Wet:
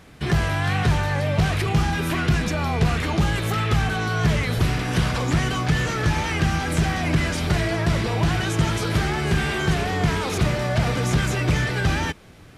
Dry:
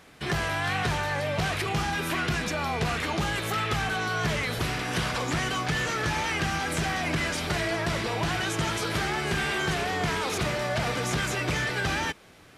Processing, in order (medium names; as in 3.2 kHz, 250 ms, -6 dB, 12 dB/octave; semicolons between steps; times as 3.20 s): bass shelf 230 Hz +12 dB; trim +1.5 dB